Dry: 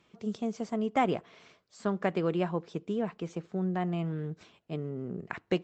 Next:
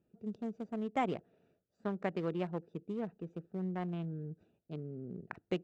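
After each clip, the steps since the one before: local Wiener filter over 41 samples; trim -6 dB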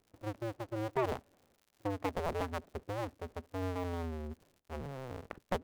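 cycle switcher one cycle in 2, inverted; treble shelf 2.7 kHz -11 dB; crackle 120 per s -54 dBFS; trim +1 dB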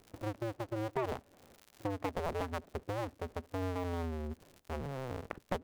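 compression 2:1, threshold -54 dBFS, peak gain reduction 14 dB; trim +11 dB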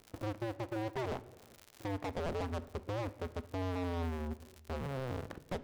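waveshaping leveller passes 1; overload inside the chain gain 33 dB; on a send at -14.5 dB: reverberation RT60 1.1 s, pre-delay 3 ms; on the sum: trim -1 dB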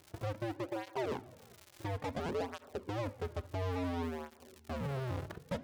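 cancelling through-zero flanger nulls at 0.58 Hz, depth 4.6 ms; trim +3.5 dB

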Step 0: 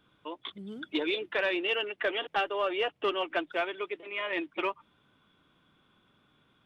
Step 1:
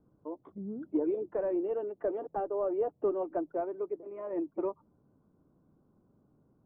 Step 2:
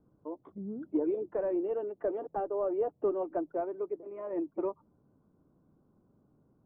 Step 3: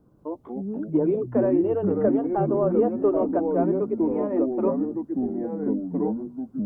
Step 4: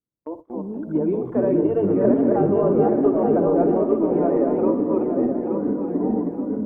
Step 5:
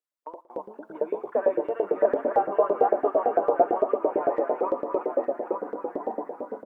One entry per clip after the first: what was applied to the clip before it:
Bessel low-pass 520 Hz, order 4; trim +3.5 dB
no audible change
ever faster or slower copies 170 ms, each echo -4 st, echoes 3; trim +8 dB
backward echo that repeats 437 ms, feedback 58%, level -1 dB; spring tank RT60 1.5 s, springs 59 ms, chirp 50 ms, DRR 10 dB; gate -37 dBFS, range -35 dB
LFO high-pass saw up 8.9 Hz 500–1800 Hz; delay 113 ms -19.5 dB; trim -2 dB

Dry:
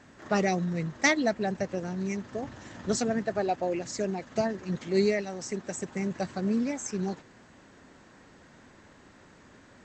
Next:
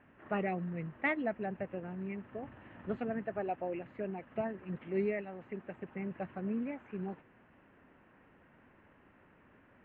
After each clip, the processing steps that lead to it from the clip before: elliptic low-pass 2.8 kHz, stop band 50 dB; trim -7.5 dB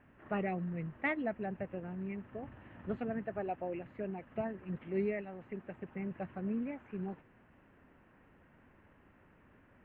bass shelf 110 Hz +8.5 dB; trim -2 dB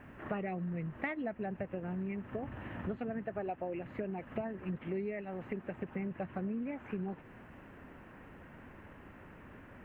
compression 6:1, threshold -46 dBFS, peak gain reduction 15.5 dB; trim +10.5 dB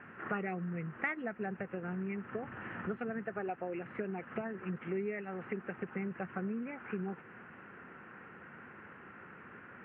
cabinet simulation 190–2700 Hz, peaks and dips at 280 Hz -9 dB, 610 Hz -9 dB, 920 Hz -4 dB, 1.4 kHz +7 dB; trim +3.5 dB

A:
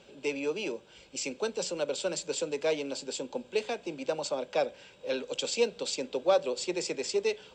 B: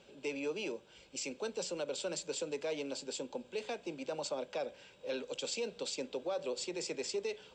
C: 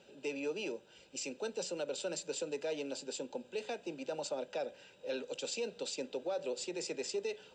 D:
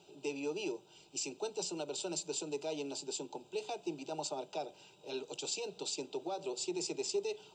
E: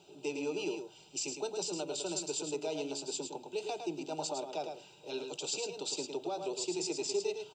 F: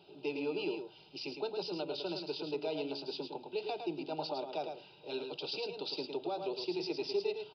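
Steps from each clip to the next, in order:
peak limiter -24 dBFS, peak gain reduction 10 dB; trim -4.5 dB
comb of notches 1.1 kHz
static phaser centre 350 Hz, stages 8; trim +4 dB
delay 108 ms -6.5 dB; trim +1.5 dB
resampled via 11.025 kHz

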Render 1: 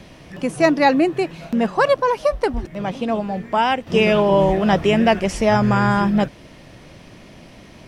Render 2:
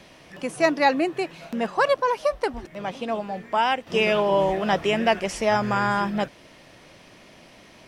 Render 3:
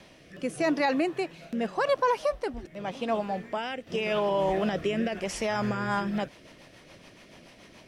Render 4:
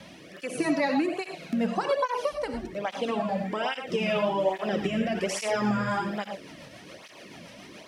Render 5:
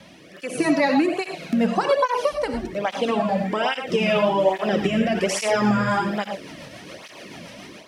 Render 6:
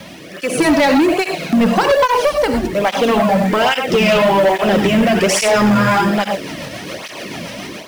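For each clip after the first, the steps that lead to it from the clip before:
bass shelf 270 Hz -12 dB; trim -2.5 dB
peak limiter -16 dBFS, peak gain reduction 9 dB; rotary cabinet horn 0.85 Hz, later 7 Hz, at 5.47 s
compression 3:1, threshold -31 dBFS, peak gain reduction 8.5 dB; gated-style reverb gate 130 ms rising, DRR 5 dB; cancelling through-zero flanger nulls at 1.2 Hz, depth 2.9 ms; trim +7.5 dB
level rider gain up to 6.5 dB
in parallel at -4 dB: companded quantiser 4-bit; on the sum: saturation -16 dBFS, distortion -10 dB; trim +7.5 dB

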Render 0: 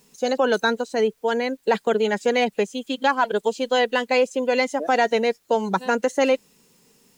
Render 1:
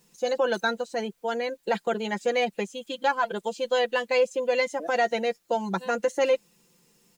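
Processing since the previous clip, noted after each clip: comb 5.8 ms, depth 67%; trim -6.5 dB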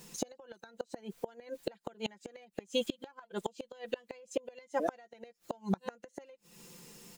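compression 10:1, threshold -34 dBFS, peak gain reduction 16.5 dB; inverted gate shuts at -29 dBFS, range -28 dB; trim +9.5 dB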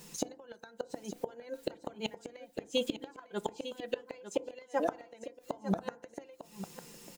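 delay 901 ms -11.5 dB; FDN reverb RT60 0.53 s, low-frequency decay 1.05×, high-frequency decay 0.35×, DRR 16 dB; trim +1 dB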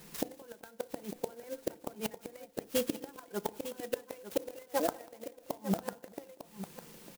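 feedback delay 192 ms, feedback 40%, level -22.5 dB; sampling jitter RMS 0.069 ms

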